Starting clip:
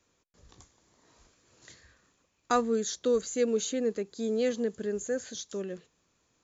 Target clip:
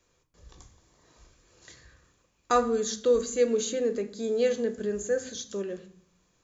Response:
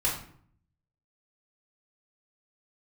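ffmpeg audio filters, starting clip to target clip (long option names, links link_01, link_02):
-filter_complex "[0:a]asplit=2[link_01][link_02];[1:a]atrim=start_sample=2205,lowshelf=frequency=190:gain=5[link_03];[link_02][link_03]afir=irnorm=-1:irlink=0,volume=-13.5dB[link_04];[link_01][link_04]amix=inputs=2:normalize=0"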